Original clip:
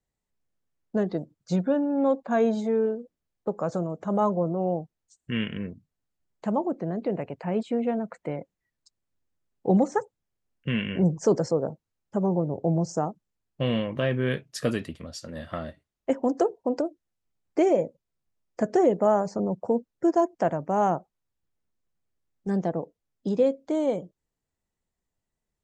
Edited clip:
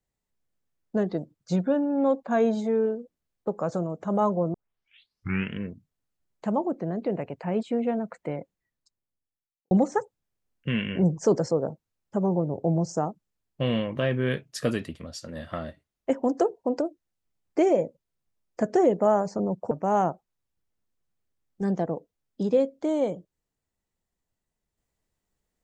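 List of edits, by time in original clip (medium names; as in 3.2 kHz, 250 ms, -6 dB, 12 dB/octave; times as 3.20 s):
4.54 s: tape start 0.98 s
8.38–9.71 s: studio fade out
19.71–20.57 s: delete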